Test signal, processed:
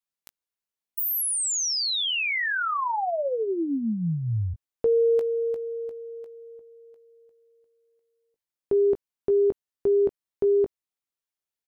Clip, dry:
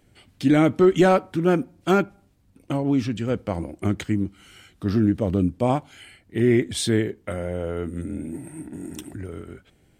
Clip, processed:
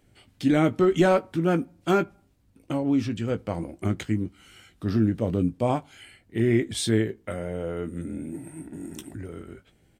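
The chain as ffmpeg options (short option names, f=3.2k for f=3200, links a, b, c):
-filter_complex "[0:a]asplit=2[a][b];[b]adelay=18,volume=-10dB[c];[a][c]amix=inputs=2:normalize=0,volume=-3dB"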